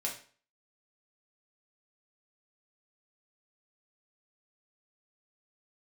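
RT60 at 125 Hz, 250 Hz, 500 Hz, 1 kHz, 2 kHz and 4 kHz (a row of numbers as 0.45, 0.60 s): 0.45, 0.45, 0.45, 0.45, 0.40, 0.40 s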